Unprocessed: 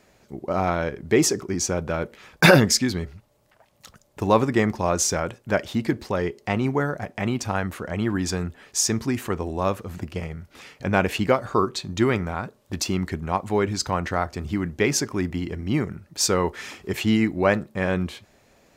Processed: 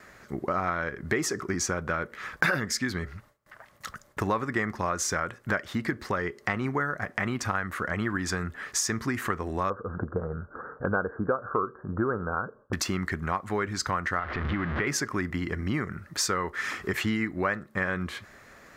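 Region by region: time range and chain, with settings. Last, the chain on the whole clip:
0:09.70–0:12.73: Chebyshev low-pass filter 1,600 Hz, order 8 + parametric band 480 Hz +10 dB 0.42 octaves
0:14.19–0:14.87: converter with a step at zero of −24.5 dBFS + low-pass filter 3,300 Hz 24 dB per octave + downward compressor 2 to 1, threshold −27 dBFS
whole clip: flat-topped bell 1,500 Hz +10.5 dB 1.1 octaves; downward compressor 4 to 1, threshold −30 dBFS; noise gate with hold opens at −51 dBFS; level +3 dB

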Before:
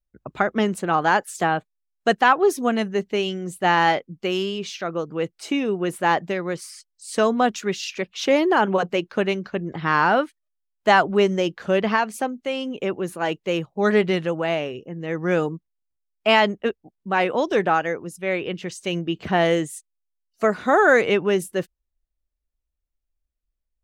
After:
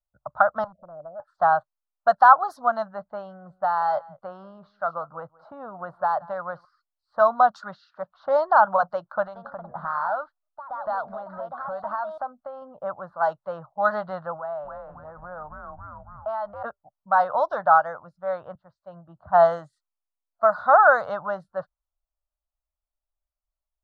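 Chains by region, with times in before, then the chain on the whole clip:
0:00.64–0:01.20: Butterworth low-pass 650 Hz 96 dB per octave + hard clipping −21 dBFS + downward compressor 4 to 1, threshold −35 dBFS
0:03.33–0:06.65: downward compressor 20 to 1, threshold −19 dBFS + single-tap delay 177 ms −22.5 dB
0:07.21–0:08.12: high-pass filter 130 Hz + low-shelf EQ 230 Hz +3.5 dB
0:09.26–0:12.62: downward compressor 10 to 1, threshold −25 dBFS + delay with pitch and tempo change per echo 92 ms, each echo +3 semitones, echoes 2, each echo −6 dB
0:14.36–0:16.63: echo with shifted repeats 273 ms, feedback 44%, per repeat −130 Hz, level −3.5 dB + downward compressor 3 to 1, threshold −31 dBFS
0:18.55–0:19.73: parametric band 450 Hz −4 dB 0.27 octaves + multiband upward and downward expander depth 100%
whole clip: drawn EQ curve 130 Hz 0 dB, 410 Hz −20 dB, 590 Hz +12 dB, 1,400 Hz +14 dB, 2,400 Hz −29 dB, 4,300 Hz −1 dB, 6,500 Hz −21 dB; low-pass that shuts in the quiet parts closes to 1,100 Hz, open at −8 dBFS; high-shelf EQ 6,100 Hz +11.5 dB; level −9 dB

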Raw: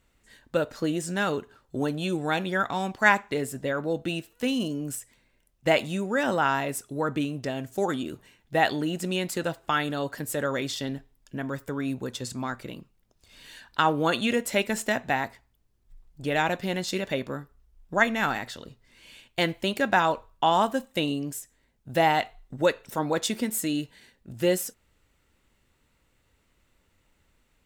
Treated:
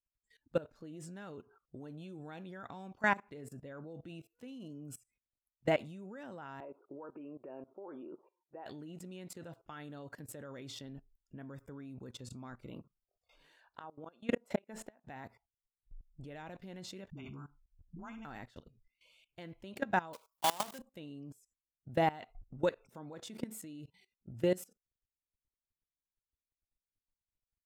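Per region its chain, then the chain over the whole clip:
0:06.60–0:08.66: downward compressor 2.5 to 1, threshold −35 dBFS + loudspeaker in its box 340–2,300 Hz, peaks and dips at 360 Hz +9 dB, 550 Hz +7 dB, 960 Hz +8 dB, 2,000 Hz −8 dB
0:12.72–0:15.07: parametric band 790 Hz +8 dB 2.3 octaves + gate with flip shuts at −11 dBFS, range −25 dB
0:17.10–0:18.25: phaser with its sweep stopped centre 2,700 Hz, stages 8 + all-pass dispersion highs, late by 71 ms, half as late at 320 Hz + flutter between parallel walls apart 10.9 metres, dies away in 0.28 s
0:20.13–0:20.79: one scale factor per block 3 bits + spectral tilt +3.5 dB per octave
whole clip: noise reduction from a noise print of the clip's start 23 dB; spectral tilt −2 dB per octave; output level in coarse steps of 20 dB; level −7 dB

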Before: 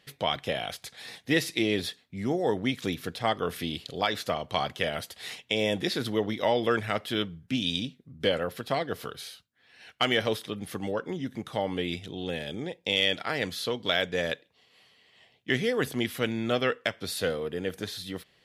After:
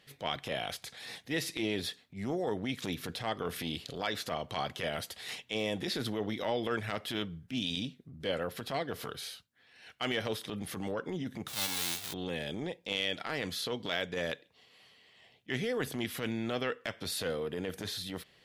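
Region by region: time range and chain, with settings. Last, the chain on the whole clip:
0:11.47–0:12.12: spectral envelope flattened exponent 0.1 + parametric band 3,700 Hz +6.5 dB 0.49 octaves
whole clip: transient designer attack −11 dB, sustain +1 dB; downward compressor 2 to 1, threshold −33 dBFS

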